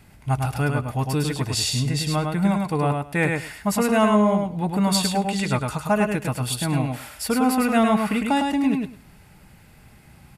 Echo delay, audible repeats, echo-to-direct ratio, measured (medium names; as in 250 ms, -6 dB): 105 ms, 2, -4.0 dB